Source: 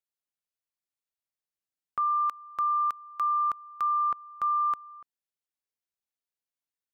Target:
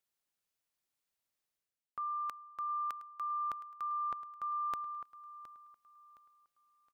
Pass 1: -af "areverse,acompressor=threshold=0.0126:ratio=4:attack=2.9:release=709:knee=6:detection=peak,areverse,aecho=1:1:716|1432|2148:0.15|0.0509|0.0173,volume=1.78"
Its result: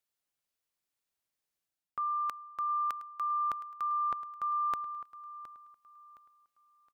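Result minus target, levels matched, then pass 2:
compression: peak gain reduction -5 dB
-af "areverse,acompressor=threshold=0.00596:ratio=4:attack=2.9:release=709:knee=6:detection=peak,areverse,aecho=1:1:716|1432|2148:0.15|0.0509|0.0173,volume=1.78"

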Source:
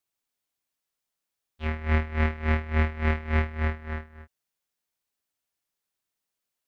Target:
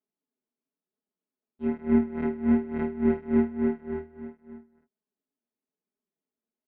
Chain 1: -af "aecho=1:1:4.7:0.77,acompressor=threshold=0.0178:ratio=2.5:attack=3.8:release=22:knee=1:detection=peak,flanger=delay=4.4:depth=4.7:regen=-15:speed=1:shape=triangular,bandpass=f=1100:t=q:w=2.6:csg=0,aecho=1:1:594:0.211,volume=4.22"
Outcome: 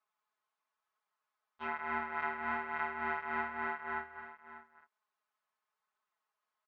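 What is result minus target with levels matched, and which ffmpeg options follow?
1 kHz band +16.5 dB; compression: peak gain reduction +11.5 dB
-af "aecho=1:1:4.7:0.77,flanger=delay=4.4:depth=4.7:regen=-15:speed=1:shape=triangular,bandpass=f=290:t=q:w=2.6:csg=0,aecho=1:1:594:0.211,volume=4.22"

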